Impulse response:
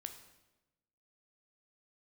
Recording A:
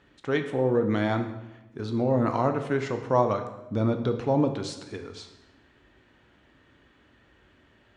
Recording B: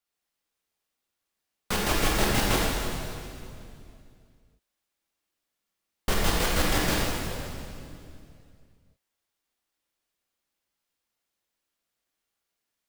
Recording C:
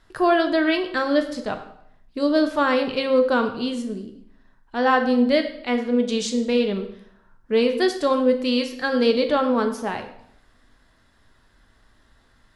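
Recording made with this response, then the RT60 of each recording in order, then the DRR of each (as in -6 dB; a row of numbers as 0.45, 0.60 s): A; 1.0, 2.5, 0.70 s; 6.0, -4.0, 5.5 dB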